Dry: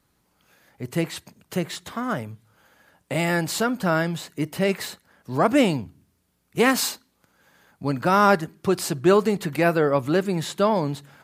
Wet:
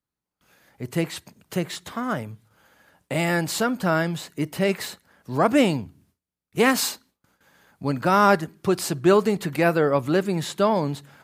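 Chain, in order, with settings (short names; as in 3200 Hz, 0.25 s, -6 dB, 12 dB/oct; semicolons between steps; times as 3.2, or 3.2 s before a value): gate with hold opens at -51 dBFS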